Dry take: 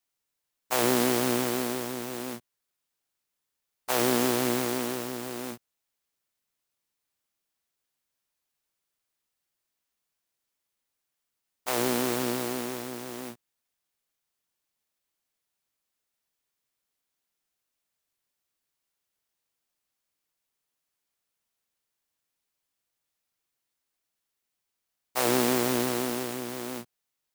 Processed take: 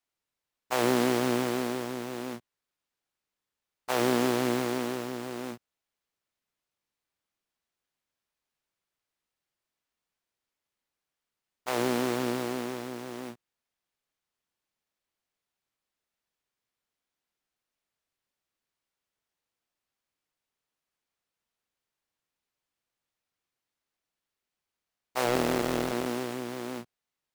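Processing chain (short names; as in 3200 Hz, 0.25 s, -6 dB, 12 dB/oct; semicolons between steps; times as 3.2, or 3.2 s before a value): 25.24–26.06 cycle switcher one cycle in 3, muted; LPF 3600 Hz 6 dB/oct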